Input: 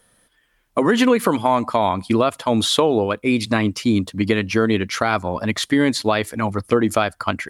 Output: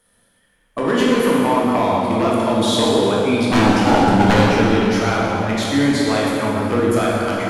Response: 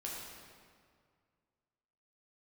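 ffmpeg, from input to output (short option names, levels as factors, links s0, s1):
-filter_complex "[0:a]asettb=1/sr,asplit=3[s0][s1][s2];[s0]atrim=end=3.474[s3];[s1]atrim=start=3.47:end=4.45,asetpts=PTS-STARTPTS,afade=t=in:d=0.004:c=qsin,afade=t=out:st=0.976:d=0.004:c=qsin,equalizer=f=390:w=0.34:g=14[s4];[s2]atrim=start=4.446[s5];[s3][s4]acrossfade=d=0.004:c1=hsin:c2=qsin[s6];[s6][s5]acrossfade=d=0.004:c1=qsin:c2=hsin,aeval=exprs='0.398*(abs(mod(val(0)/0.398+3,4)-2)-1)':c=same[s7];[1:a]atrim=start_sample=2205,asetrate=26019,aresample=44100[s8];[s7][s8]afir=irnorm=-1:irlink=0,volume=0.75"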